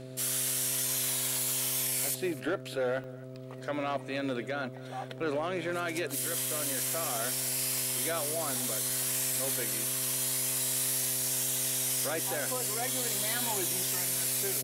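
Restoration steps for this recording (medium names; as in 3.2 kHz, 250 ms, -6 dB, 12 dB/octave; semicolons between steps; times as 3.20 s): clip repair -24.5 dBFS; de-hum 129.3 Hz, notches 5; interpolate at 3.04/3.35/8.90/9.33 s, 1.4 ms; inverse comb 252 ms -21 dB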